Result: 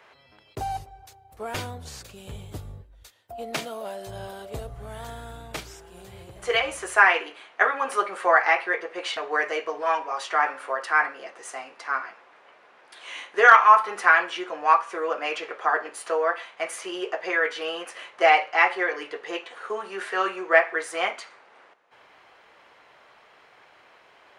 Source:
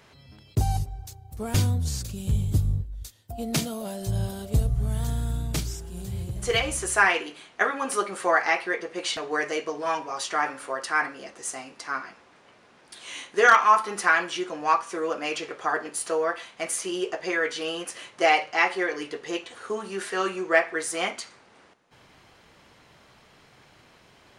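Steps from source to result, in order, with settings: three-band isolator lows -20 dB, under 420 Hz, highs -13 dB, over 3000 Hz; gain +4 dB

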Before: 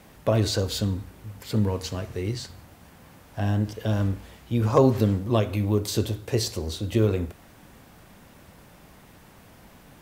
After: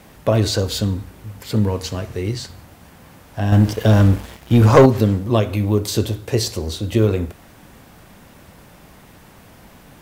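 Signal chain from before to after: 3.52–4.86 sample leveller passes 2; gain +5.5 dB

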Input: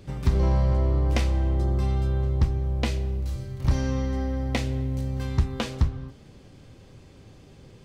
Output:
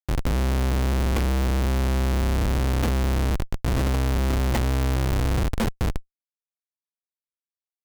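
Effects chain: buzz 400 Hz, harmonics 13, -55 dBFS -2 dB/oct; Schmitt trigger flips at -27 dBFS; gain +3.5 dB

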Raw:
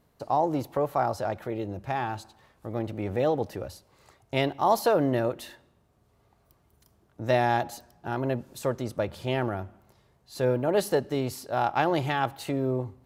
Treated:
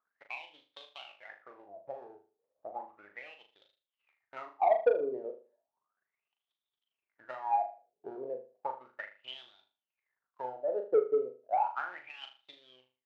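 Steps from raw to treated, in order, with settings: switching dead time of 0.14 ms; low shelf 390 Hz +8 dB; transient shaper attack +10 dB, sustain -12 dB; wah 0.34 Hz 420–3600 Hz, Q 16; overdrive pedal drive 16 dB, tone 2000 Hz, clips at -7.5 dBFS; on a send: flutter echo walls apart 6.7 m, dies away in 0.35 s; on the sum: gain -7.5 dB

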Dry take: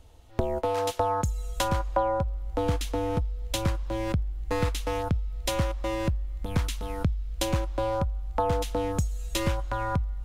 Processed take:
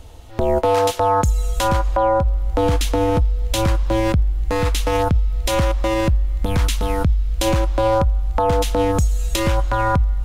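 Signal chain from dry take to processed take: maximiser +21 dB; gain -8 dB

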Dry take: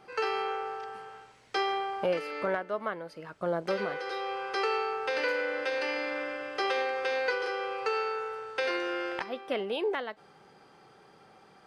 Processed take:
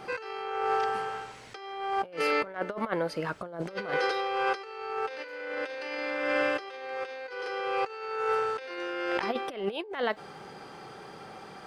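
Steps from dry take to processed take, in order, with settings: negative-ratio compressor -37 dBFS, ratio -0.5; gain +6 dB

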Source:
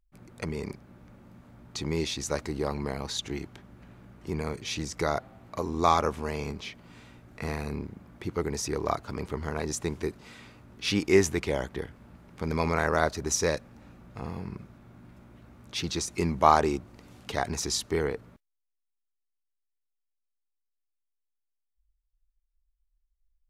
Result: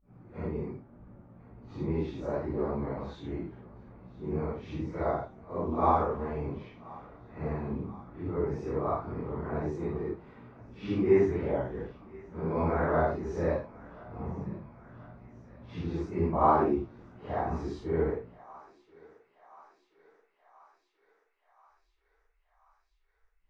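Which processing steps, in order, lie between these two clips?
phase scrambler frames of 0.2 s; LPF 1100 Hz 12 dB/oct; on a send: thinning echo 1.03 s, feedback 74%, high-pass 720 Hz, level -19.5 dB

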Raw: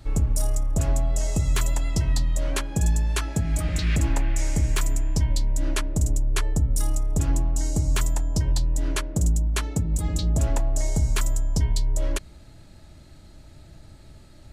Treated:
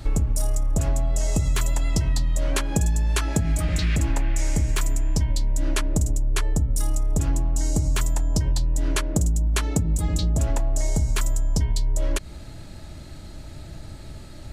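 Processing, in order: compressor, threshold -27 dBFS, peak gain reduction 10 dB; gain +8.5 dB

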